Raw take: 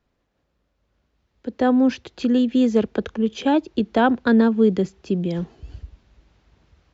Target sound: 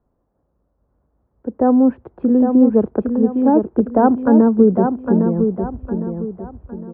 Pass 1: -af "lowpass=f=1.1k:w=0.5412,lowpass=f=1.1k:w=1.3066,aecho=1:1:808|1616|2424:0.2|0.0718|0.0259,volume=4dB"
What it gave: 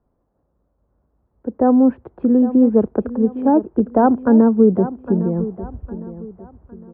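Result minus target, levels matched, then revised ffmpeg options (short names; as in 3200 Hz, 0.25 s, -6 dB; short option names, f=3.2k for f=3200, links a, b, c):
echo-to-direct -8 dB
-af "lowpass=f=1.1k:w=0.5412,lowpass=f=1.1k:w=1.3066,aecho=1:1:808|1616|2424|3232:0.501|0.18|0.065|0.0234,volume=4dB"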